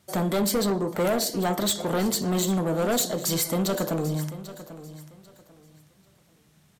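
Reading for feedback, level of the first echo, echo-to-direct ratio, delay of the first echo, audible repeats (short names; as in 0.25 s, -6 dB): 25%, -15.0 dB, -14.5 dB, 0.792 s, 2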